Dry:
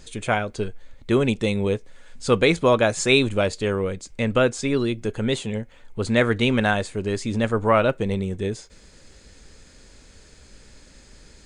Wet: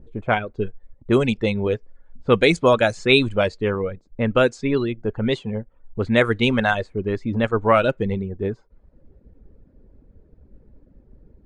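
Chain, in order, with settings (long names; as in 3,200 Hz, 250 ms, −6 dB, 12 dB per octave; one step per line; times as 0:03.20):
reverb reduction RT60 0.75 s
low-pass that shuts in the quiet parts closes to 390 Hz, open at −14.5 dBFS
level +2.5 dB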